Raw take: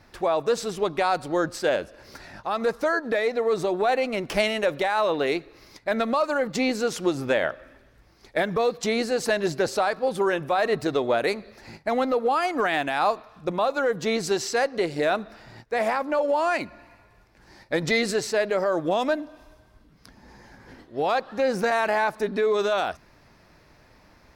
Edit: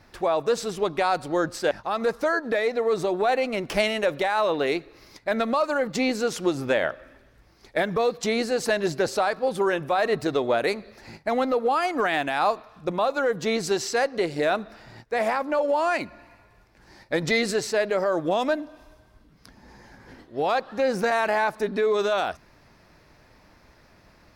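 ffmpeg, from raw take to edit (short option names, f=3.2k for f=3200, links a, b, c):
-filter_complex "[0:a]asplit=2[a][b];[a]atrim=end=1.712[c];[b]atrim=start=2.308[d];[c][d]acrossfade=d=0.004:c1=hsin:c2=hsin"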